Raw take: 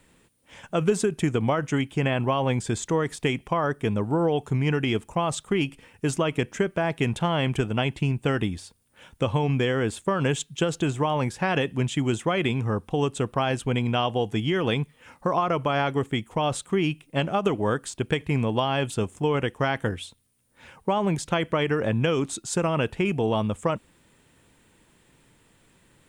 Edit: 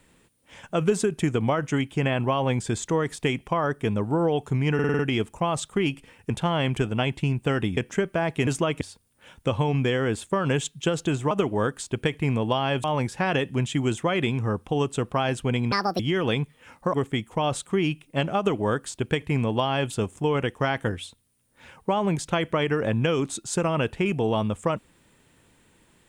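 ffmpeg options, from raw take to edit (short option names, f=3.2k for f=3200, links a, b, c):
-filter_complex "[0:a]asplit=15[a][b][c][d][e][f][g][h][i][j][k][l][m][n][o];[a]atrim=end=4.792[p];[b]atrim=start=4.738:end=4.792[q];[c]atrim=start=4.738:end=4.792[r];[d]atrim=start=4.738:end=4.792[s];[e]atrim=start=4.738:end=4.792[t];[f]atrim=start=4.738:end=6.052[u];[g]atrim=start=7.088:end=8.562[v];[h]atrim=start=6.388:end=7.092[w];[i]atrim=start=6.048:end=6.392[x];[j]atrim=start=8.558:end=11.062[y];[k]atrim=start=17.378:end=18.912[z];[l]atrim=start=11.058:end=13.944[aa];[m]atrim=start=13.94:end=14.39,asetpts=PTS-STARTPTS,asetrate=72324,aresample=44100[ab];[n]atrim=start=14.386:end=15.332[ac];[o]atrim=start=15.928[ad];[p][q]acrossfade=d=0.004:c1=hsin:c2=hsin[ae];[ae][r]acrossfade=d=0.004:c1=hsin:c2=hsin[af];[af][s]acrossfade=d=0.004:c1=hsin:c2=hsin[ag];[ag][t]acrossfade=d=0.004:c1=hsin:c2=hsin[ah];[ah][u]acrossfade=d=0.004:c1=hsin:c2=hsin[ai];[ai][v]acrossfade=d=0.004:c1=hsin:c2=hsin[aj];[aj][w]acrossfade=d=0.004:c1=hsin:c2=hsin[ak];[ak][x]acrossfade=d=0.004:c1=hsin:c2=hsin[al];[al][y]acrossfade=d=0.004:c1=hsin:c2=hsin[am];[am][z]acrossfade=d=0.004:c1=hsin:c2=hsin[an];[an][aa]acrossfade=d=0.004:c1=hsin:c2=hsin[ao];[ao][ab]acrossfade=d=0.004:c1=hsin:c2=hsin[ap];[ap][ac]acrossfade=d=0.004:c1=hsin:c2=hsin[aq];[aq][ad]acrossfade=d=0.004:c1=hsin:c2=hsin"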